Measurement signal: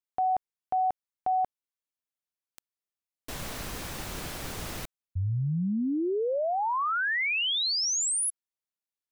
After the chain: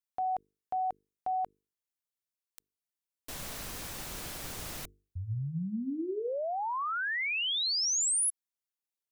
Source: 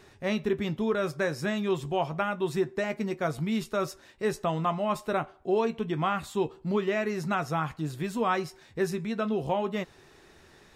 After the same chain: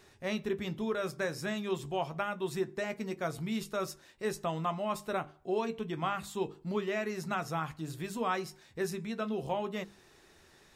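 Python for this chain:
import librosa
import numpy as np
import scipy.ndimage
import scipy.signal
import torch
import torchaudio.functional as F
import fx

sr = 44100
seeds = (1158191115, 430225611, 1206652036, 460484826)

y = fx.high_shelf(x, sr, hz=4400.0, db=6.0)
y = fx.hum_notches(y, sr, base_hz=50, count=9)
y = y * 10.0 ** (-5.5 / 20.0)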